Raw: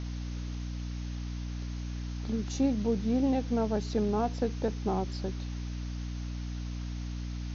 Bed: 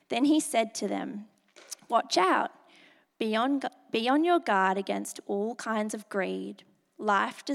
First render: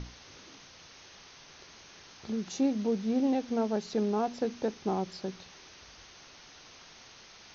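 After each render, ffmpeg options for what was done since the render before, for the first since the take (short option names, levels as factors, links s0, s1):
-af "bandreject=f=60:t=h:w=6,bandreject=f=120:t=h:w=6,bandreject=f=180:t=h:w=6,bandreject=f=240:t=h:w=6,bandreject=f=300:t=h:w=6"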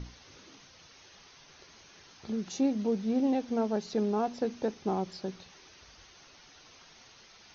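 -af "afftdn=nr=6:nf=-54"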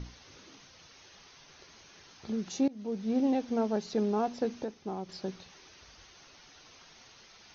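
-filter_complex "[0:a]asplit=4[s0][s1][s2][s3];[s0]atrim=end=2.68,asetpts=PTS-STARTPTS,afade=t=out:st=2.676:d=0.004:c=hsin:silence=0.0794328[s4];[s1]atrim=start=2.68:end=4.642,asetpts=PTS-STARTPTS,afade=t=in:d=0.48:silence=0.0794328[s5];[s2]atrim=start=4.638:end=5.092,asetpts=PTS-STARTPTS,volume=0.473[s6];[s3]atrim=start=5.088[s7];[s4][s5]concat=n=2:v=0:a=1[s8];[s8][s6]acrossfade=d=0.004:c1=hsin:c2=hsin[s9];[s9][s7]acrossfade=d=0.004:c1=hsin:c2=hsin"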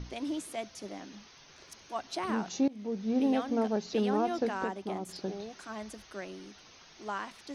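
-filter_complex "[1:a]volume=0.266[s0];[0:a][s0]amix=inputs=2:normalize=0"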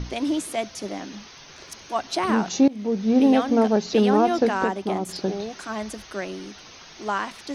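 -af "volume=3.35"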